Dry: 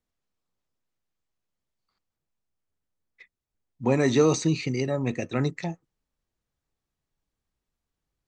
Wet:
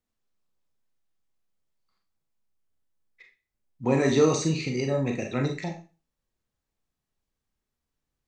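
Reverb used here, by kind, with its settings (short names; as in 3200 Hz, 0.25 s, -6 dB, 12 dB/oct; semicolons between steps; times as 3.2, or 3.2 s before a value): Schroeder reverb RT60 0.32 s, combs from 29 ms, DRR 2.5 dB; gain -2 dB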